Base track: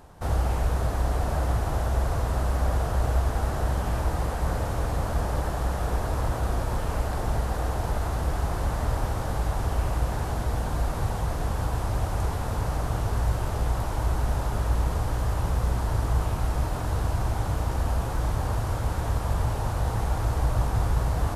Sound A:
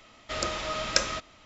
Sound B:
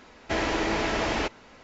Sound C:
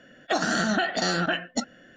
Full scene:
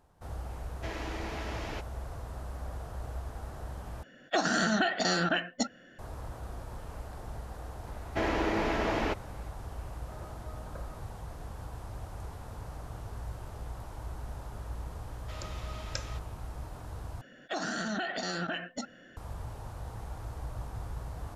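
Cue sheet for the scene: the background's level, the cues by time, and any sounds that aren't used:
base track -15 dB
0.53 add B -13 dB
4.03 replace with C -3 dB
7.86 add B -2 dB + high shelf 3000 Hz -11 dB
9.79 add A -16.5 dB + LPF 1200 Hz 24 dB/oct
14.99 add A -14.5 dB
17.21 replace with C -2 dB + limiter -23.5 dBFS

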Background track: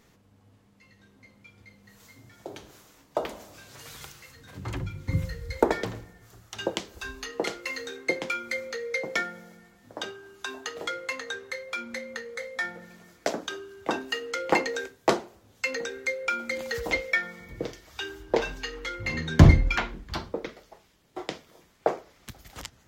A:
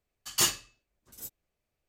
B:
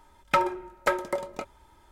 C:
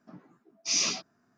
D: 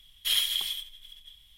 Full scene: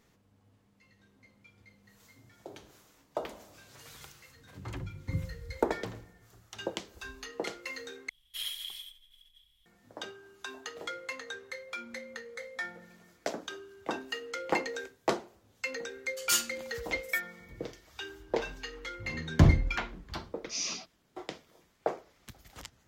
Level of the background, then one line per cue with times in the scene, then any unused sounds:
background track -6.5 dB
8.09 replace with D -11.5 dB
15.91 add A -9 dB + tilt shelf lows -7 dB
19.84 add C -8 dB
not used: B

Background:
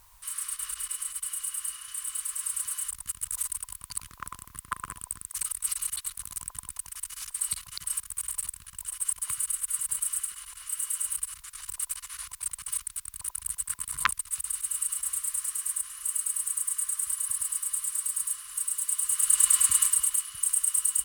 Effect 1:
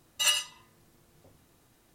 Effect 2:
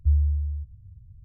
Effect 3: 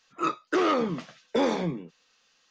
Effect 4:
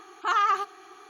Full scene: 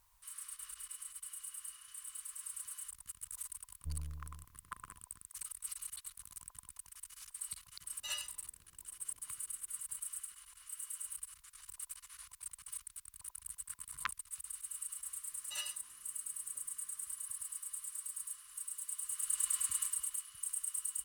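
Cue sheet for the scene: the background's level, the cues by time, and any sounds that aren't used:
background -13.5 dB
3.8 add 2 -18 dB + half-wave gain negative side -12 dB
7.84 add 1 -15.5 dB
15.31 add 1 -17.5 dB
not used: 3, 4

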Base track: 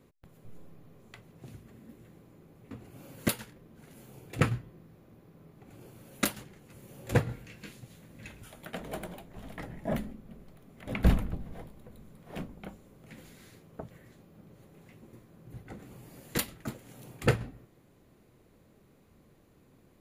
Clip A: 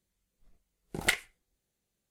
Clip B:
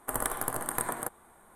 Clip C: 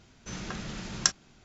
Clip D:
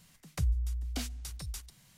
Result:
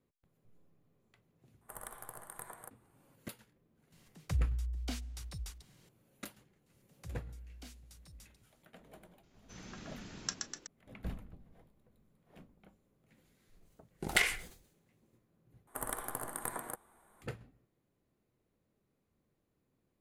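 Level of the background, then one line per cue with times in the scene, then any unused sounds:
base track -18 dB
1.61 add B -16 dB + bell 280 Hz -11 dB 0.51 oct
3.92 add D -2.5 dB + high shelf 5800 Hz -6.5 dB
6.66 add D -15.5 dB
9.23 add C -13.5 dB + frequency-shifting echo 0.124 s, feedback 59%, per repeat +58 Hz, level -4 dB
13.08 add A -2.5 dB + sustainer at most 94 dB/s
15.67 replace with B -8 dB

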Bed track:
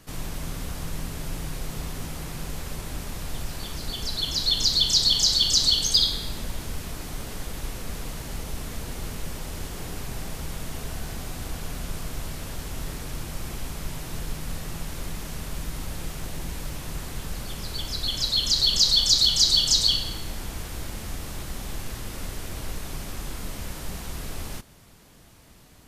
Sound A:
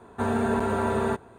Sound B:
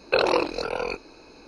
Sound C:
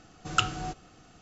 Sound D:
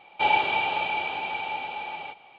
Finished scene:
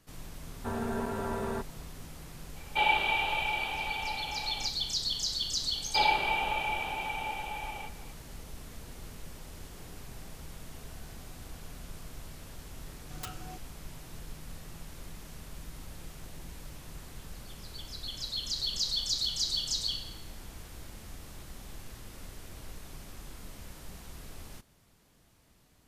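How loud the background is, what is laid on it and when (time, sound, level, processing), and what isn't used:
bed track -12 dB
0.46 add A -9 dB
2.56 add D -6.5 dB + high shelf 2800 Hz +10 dB
5.75 add D -4.5 dB
12.85 add C -11.5 dB + wrapped overs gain 19.5 dB
not used: B

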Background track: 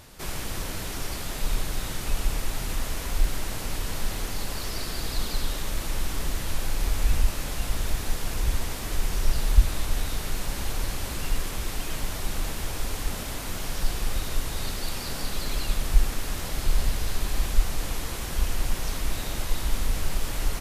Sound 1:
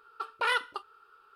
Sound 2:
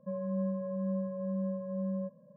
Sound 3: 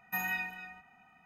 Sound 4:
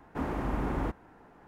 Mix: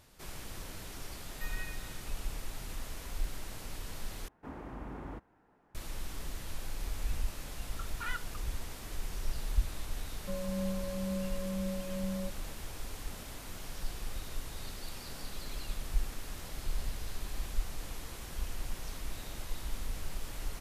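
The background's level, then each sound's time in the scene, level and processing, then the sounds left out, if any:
background track -12 dB
1.28 add 3 -15 dB + resonant high-pass 1400 Hz, resonance Q 2
4.28 replace with 4 -12 dB
7.59 add 1 -16 dB + resonant high-pass 1400 Hz, resonance Q 2
10.21 add 2 -2.5 dB

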